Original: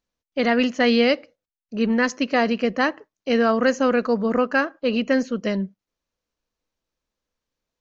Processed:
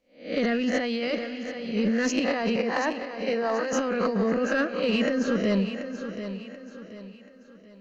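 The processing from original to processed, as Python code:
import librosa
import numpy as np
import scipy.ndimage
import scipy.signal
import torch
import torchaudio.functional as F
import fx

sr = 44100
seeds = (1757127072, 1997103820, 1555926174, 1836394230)

p1 = fx.spec_swells(x, sr, rise_s=0.39)
p2 = fx.rotary_switch(p1, sr, hz=0.7, then_hz=5.0, switch_at_s=4.63)
p3 = fx.rev_plate(p2, sr, seeds[0], rt60_s=4.9, hf_ratio=0.9, predelay_ms=0, drr_db=20.0)
p4 = fx.over_compress(p3, sr, threshold_db=-24.0, ratio=-1.0)
p5 = fx.cabinet(p4, sr, low_hz=370.0, low_slope=12, high_hz=5700.0, hz=(900.0, 1400.0, 3200.0), db=(5, -6, -8), at=(2.56, 3.73))
p6 = 10.0 ** (-14.0 / 20.0) * np.tanh(p5 / 10.0 ** (-14.0 / 20.0))
y = p6 + fx.echo_feedback(p6, sr, ms=733, feedback_pct=38, wet_db=-10, dry=0)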